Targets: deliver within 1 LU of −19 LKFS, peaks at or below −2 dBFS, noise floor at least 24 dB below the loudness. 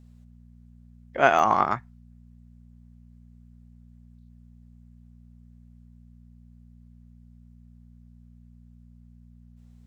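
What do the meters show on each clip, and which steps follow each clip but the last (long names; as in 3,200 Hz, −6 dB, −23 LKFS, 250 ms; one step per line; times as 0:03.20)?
number of dropouts 1; longest dropout 2.3 ms; mains hum 60 Hz; hum harmonics up to 240 Hz; level of the hum −48 dBFS; integrated loudness −22.5 LKFS; sample peak −2.0 dBFS; target loudness −19.0 LKFS
→ repair the gap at 0:01.39, 2.3 ms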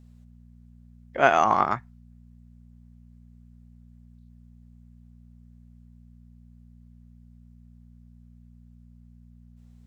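number of dropouts 0; mains hum 60 Hz; hum harmonics up to 240 Hz; level of the hum −48 dBFS
→ hum removal 60 Hz, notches 4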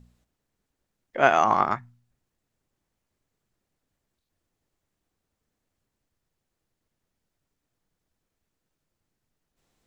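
mains hum none found; integrated loudness −22.5 LKFS; sample peak −2.0 dBFS; target loudness −19.0 LKFS
→ level +3.5 dB
brickwall limiter −2 dBFS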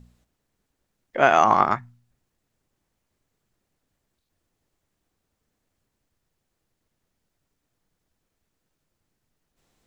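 integrated loudness −19.5 LKFS; sample peak −2.0 dBFS; background noise floor −79 dBFS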